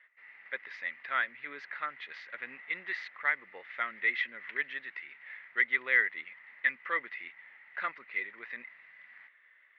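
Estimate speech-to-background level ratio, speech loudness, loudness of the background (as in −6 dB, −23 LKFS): 19.0 dB, −33.5 LKFS, −52.5 LKFS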